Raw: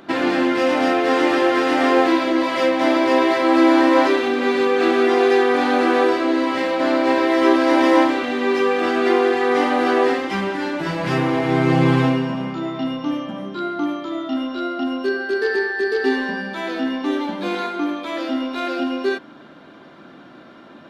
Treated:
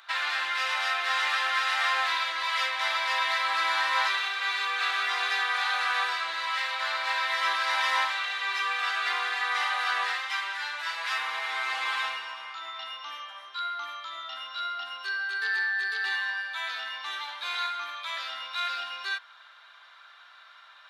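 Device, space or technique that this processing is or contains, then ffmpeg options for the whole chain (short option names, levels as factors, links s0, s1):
headphones lying on a table: -filter_complex "[0:a]highpass=f=1100:w=0.5412,highpass=f=1100:w=1.3066,equalizer=f=3800:t=o:w=0.21:g=7,asettb=1/sr,asplit=3[s0][s1][s2];[s0]atrim=end=15.284[s3];[s1]atrim=start=15.28:end=16.69,asetpts=PTS-STARTPTS,afade=t=in:d=0.004:c=qsin,afade=t=out:st=1.406:d=0.004:c=qsin,equalizer=f=5200:t=o:w=0.28:g=-6[s4];[s2]atrim=start=16.686[s5];[s3][s4]acrossfade=d=0.004:c1=hsin:c2=qsin[s6];[s6][s5]acrossfade=d=0.004:c1=qsin:c2=hsin,volume=0.75"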